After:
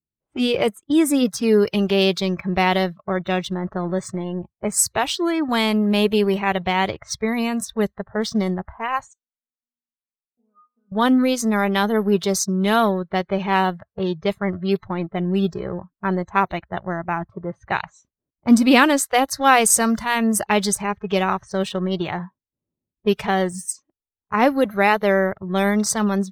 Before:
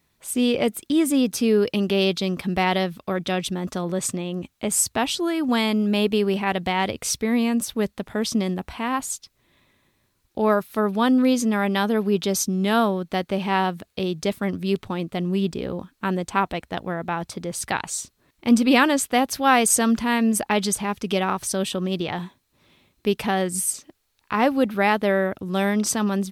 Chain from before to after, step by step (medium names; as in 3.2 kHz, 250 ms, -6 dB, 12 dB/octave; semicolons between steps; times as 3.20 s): 9.13–10.92 s: inharmonic resonator 240 Hz, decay 0.7 s, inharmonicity 0.002; level-controlled noise filter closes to 380 Hz, open at -18 dBFS; in parallel at -3 dB: crossover distortion -34 dBFS; on the sum: spectral noise reduction 21 dB; trim -1 dB